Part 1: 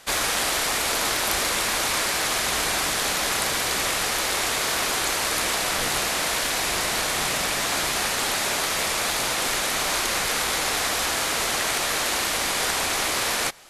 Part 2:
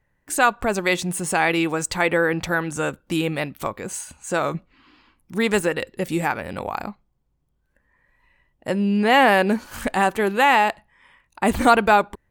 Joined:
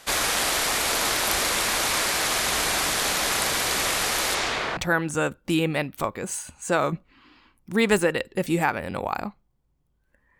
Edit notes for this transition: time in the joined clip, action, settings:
part 1
0:04.34–0:04.77: low-pass filter 8,000 Hz → 1,800 Hz
0:04.77: continue with part 2 from 0:02.39

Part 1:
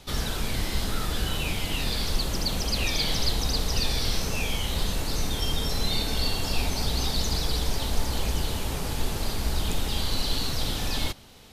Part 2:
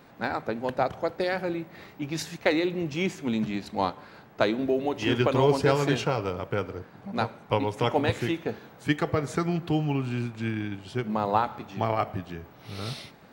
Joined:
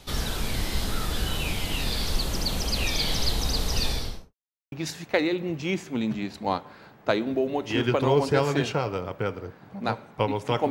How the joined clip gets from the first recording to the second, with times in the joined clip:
part 1
0:03.84–0:04.34: fade out and dull
0:04.34–0:04.72: silence
0:04.72: continue with part 2 from 0:02.04

